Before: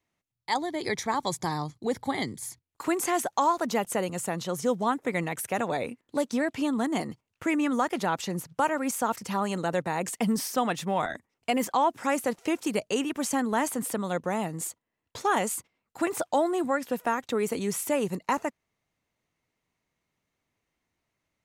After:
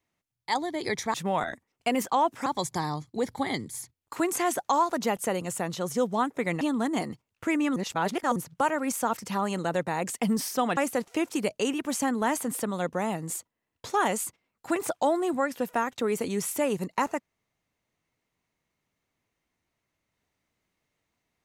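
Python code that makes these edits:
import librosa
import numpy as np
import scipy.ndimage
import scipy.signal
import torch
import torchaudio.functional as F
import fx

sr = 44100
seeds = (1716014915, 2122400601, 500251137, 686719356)

y = fx.edit(x, sr, fx.cut(start_s=5.29, length_s=1.31),
    fx.reverse_span(start_s=7.75, length_s=0.6),
    fx.move(start_s=10.76, length_s=1.32, to_s=1.14), tone=tone)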